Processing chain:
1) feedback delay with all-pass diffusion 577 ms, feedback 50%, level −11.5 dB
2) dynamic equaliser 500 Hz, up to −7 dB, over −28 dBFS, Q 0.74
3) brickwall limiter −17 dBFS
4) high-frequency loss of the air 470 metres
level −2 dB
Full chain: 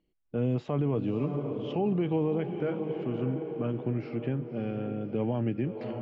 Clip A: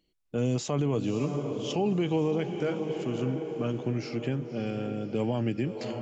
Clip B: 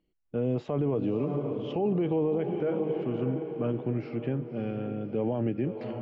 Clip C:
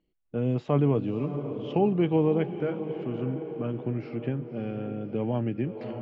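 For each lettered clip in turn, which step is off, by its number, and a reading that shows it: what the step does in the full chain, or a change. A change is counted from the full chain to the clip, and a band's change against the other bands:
4, 2 kHz band +4.0 dB
2, 500 Hz band +2.5 dB
3, change in crest factor +5.0 dB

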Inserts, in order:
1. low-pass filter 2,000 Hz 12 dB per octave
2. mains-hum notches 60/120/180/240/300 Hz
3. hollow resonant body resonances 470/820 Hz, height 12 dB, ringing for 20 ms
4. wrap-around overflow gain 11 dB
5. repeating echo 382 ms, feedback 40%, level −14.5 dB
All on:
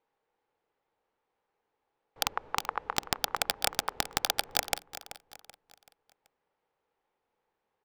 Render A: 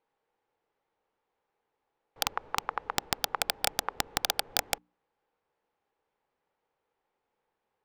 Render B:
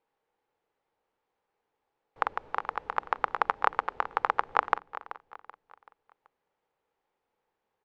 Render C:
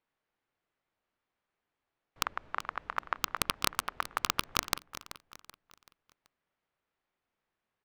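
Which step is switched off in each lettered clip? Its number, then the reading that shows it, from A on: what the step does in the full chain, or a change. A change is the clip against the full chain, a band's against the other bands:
5, change in momentary loudness spread −9 LU
4, change in crest factor +4.5 dB
3, 500 Hz band −4.5 dB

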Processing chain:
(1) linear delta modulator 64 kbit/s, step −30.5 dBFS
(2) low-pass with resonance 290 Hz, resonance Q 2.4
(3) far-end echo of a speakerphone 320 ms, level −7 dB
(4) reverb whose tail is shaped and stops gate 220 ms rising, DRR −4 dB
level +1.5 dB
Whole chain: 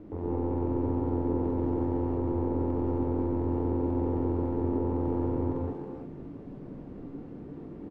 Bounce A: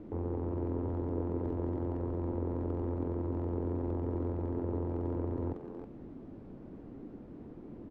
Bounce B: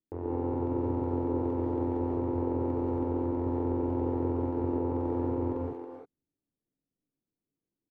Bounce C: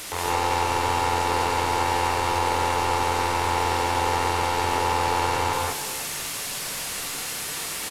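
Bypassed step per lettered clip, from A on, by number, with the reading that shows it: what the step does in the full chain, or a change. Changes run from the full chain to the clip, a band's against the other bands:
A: 4, change in integrated loudness −6.0 LU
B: 1, 125 Hz band −2.5 dB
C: 2, 1 kHz band +19.0 dB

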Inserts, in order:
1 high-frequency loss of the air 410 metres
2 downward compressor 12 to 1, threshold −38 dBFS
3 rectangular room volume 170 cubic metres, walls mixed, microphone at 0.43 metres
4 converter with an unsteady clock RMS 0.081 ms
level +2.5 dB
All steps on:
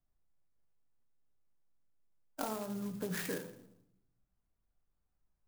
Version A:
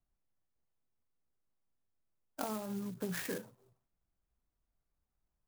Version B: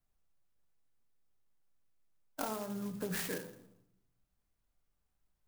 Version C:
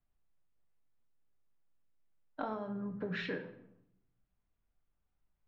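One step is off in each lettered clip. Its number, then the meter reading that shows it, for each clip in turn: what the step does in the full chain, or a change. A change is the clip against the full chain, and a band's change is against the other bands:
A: 3, change in momentary loudness spread −3 LU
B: 1, 8 kHz band +1.5 dB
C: 4, 2 kHz band +2.5 dB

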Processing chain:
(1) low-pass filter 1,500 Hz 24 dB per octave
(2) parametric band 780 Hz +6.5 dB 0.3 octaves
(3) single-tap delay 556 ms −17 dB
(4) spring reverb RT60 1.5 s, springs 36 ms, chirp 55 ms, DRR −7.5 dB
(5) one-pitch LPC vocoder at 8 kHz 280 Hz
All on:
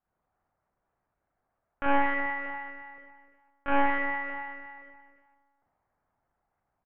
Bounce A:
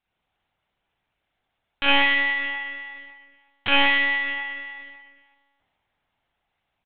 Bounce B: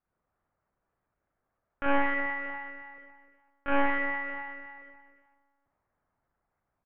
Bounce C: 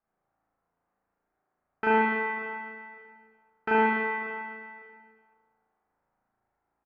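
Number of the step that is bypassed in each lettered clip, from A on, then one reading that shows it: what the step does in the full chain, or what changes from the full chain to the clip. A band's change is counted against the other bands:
1, 2 kHz band +10.0 dB
2, 1 kHz band −3.0 dB
5, 500 Hz band +3.5 dB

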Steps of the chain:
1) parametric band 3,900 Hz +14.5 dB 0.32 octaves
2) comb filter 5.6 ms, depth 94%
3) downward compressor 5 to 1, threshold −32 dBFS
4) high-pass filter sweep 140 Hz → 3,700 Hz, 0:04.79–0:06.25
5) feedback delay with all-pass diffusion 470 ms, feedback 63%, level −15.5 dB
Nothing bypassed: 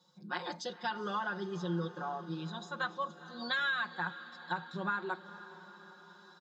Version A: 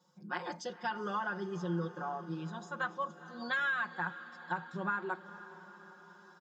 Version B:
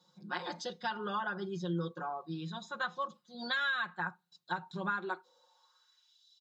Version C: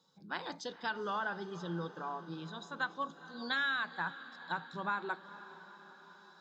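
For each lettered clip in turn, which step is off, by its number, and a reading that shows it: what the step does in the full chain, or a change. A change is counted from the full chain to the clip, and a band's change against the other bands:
1, 4 kHz band −7.0 dB
5, echo-to-direct ratio −13.5 dB to none audible
2, 125 Hz band −3.5 dB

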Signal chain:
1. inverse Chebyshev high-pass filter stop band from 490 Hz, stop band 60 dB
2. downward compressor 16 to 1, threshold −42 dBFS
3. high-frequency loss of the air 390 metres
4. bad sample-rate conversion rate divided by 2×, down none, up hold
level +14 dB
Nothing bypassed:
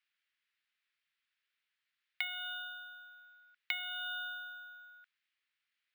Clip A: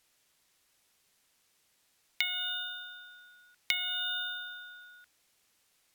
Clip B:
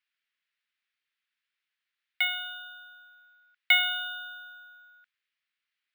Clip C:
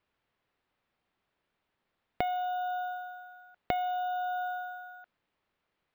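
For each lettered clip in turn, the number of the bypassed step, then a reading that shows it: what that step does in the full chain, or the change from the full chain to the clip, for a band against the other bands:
3, change in crest factor +2.0 dB
2, average gain reduction 3.5 dB
1, change in crest factor −2.5 dB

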